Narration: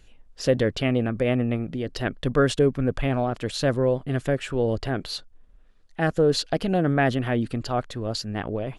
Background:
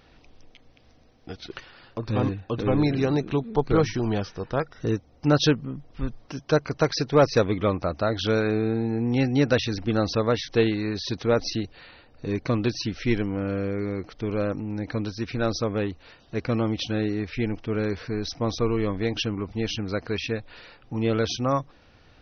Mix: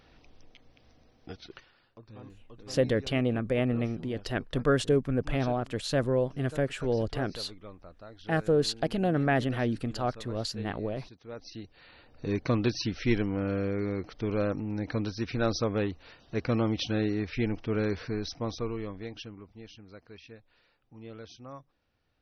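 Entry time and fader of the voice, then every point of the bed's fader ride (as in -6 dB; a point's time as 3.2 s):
2.30 s, -4.5 dB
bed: 1.24 s -3.5 dB
2.16 s -23.5 dB
11.21 s -23.5 dB
12.06 s -2.5 dB
18.03 s -2.5 dB
19.74 s -21 dB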